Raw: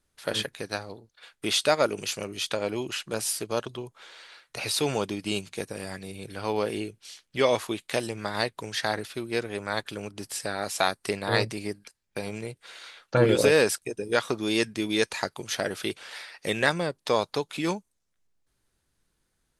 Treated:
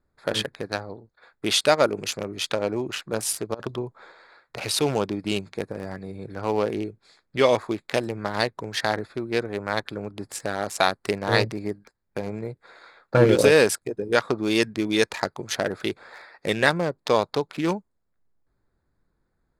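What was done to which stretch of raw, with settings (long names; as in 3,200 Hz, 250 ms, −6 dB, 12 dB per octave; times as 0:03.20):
0:03.54–0:04.12: compressor whose output falls as the input rises −33 dBFS, ratio −0.5
whole clip: adaptive Wiener filter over 15 samples; level +4 dB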